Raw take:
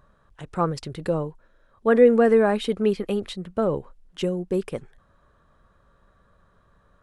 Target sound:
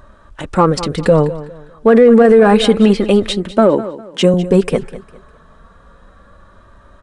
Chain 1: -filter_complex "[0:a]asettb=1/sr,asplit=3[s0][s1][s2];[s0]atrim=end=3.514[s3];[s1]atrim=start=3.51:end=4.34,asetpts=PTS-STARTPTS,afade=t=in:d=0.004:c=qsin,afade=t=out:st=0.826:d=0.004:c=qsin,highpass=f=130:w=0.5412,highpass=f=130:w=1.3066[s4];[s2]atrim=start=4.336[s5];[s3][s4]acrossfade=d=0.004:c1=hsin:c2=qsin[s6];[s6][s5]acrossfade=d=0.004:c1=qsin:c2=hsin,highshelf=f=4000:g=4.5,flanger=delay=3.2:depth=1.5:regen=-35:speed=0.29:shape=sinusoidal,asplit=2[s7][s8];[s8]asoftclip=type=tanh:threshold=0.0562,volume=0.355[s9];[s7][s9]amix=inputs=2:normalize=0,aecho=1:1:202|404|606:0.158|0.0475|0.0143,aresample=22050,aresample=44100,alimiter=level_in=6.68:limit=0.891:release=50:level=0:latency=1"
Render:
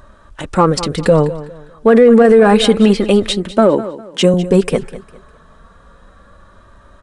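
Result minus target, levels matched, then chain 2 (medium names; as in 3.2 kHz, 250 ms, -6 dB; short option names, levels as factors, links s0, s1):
8 kHz band +3.5 dB
-filter_complex "[0:a]asettb=1/sr,asplit=3[s0][s1][s2];[s0]atrim=end=3.514[s3];[s1]atrim=start=3.51:end=4.34,asetpts=PTS-STARTPTS,afade=t=in:d=0.004:c=qsin,afade=t=out:st=0.826:d=0.004:c=qsin,highpass=f=130:w=0.5412,highpass=f=130:w=1.3066[s4];[s2]atrim=start=4.336[s5];[s3][s4]acrossfade=d=0.004:c1=hsin:c2=qsin[s6];[s6][s5]acrossfade=d=0.004:c1=qsin:c2=hsin,flanger=delay=3.2:depth=1.5:regen=-35:speed=0.29:shape=sinusoidal,asplit=2[s7][s8];[s8]asoftclip=type=tanh:threshold=0.0562,volume=0.355[s9];[s7][s9]amix=inputs=2:normalize=0,aecho=1:1:202|404|606:0.158|0.0475|0.0143,aresample=22050,aresample=44100,alimiter=level_in=6.68:limit=0.891:release=50:level=0:latency=1"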